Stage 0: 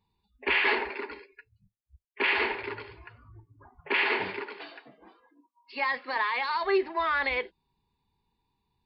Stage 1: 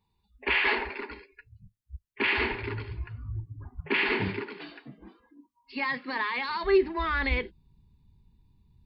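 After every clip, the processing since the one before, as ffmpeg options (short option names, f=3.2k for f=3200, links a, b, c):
-af "asubboost=boost=11.5:cutoff=190"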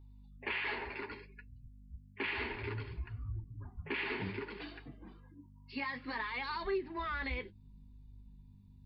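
-af "acompressor=threshold=-33dB:ratio=3,aeval=exprs='val(0)+0.00282*(sin(2*PI*50*n/s)+sin(2*PI*2*50*n/s)/2+sin(2*PI*3*50*n/s)/3+sin(2*PI*4*50*n/s)/4+sin(2*PI*5*50*n/s)/5)':c=same,flanger=delay=2.4:depth=9.8:regen=-37:speed=0.62:shape=sinusoidal"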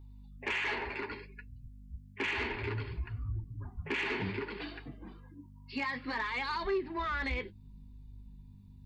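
-af "asoftclip=type=tanh:threshold=-29dB,volume=4.5dB"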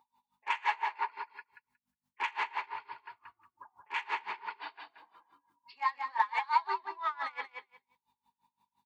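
-filter_complex "[0:a]highpass=f=910:t=q:w=6.1,asplit=2[a][b];[b]aecho=0:1:181|362|543:0.501|0.0802|0.0128[c];[a][c]amix=inputs=2:normalize=0,aeval=exprs='val(0)*pow(10,-25*(0.5-0.5*cos(2*PI*5.8*n/s))/20)':c=same"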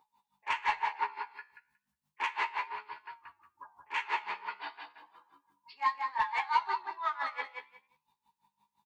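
-filter_complex "[0:a]asoftclip=type=tanh:threshold=-19dB,flanger=delay=9.3:depth=6.3:regen=82:speed=0.34:shape=sinusoidal,asplit=2[a][b];[b]adelay=14,volume=-5dB[c];[a][c]amix=inputs=2:normalize=0,volume=5dB"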